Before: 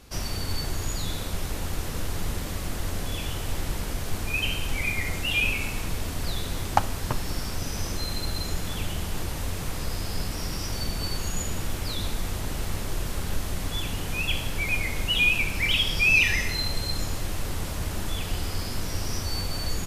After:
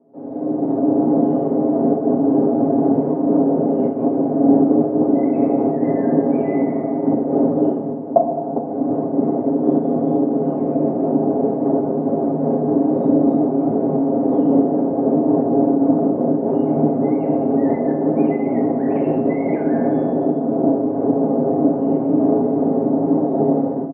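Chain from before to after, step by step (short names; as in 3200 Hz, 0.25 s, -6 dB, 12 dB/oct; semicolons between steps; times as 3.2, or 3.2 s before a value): octaver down 1 oct, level +3 dB; varispeed -17%; comb 7.4 ms, depth 95%; one-sided clip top -14 dBFS; elliptic band-pass 210–720 Hz, stop band 80 dB; FDN reverb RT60 1.3 s, low-frequency decay 0.85×, high-frequency decay 0.75×, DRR 2.5 dB; AGC gain up to 16.5 dB; noise-modulated level, depth 60%; gain +4 dB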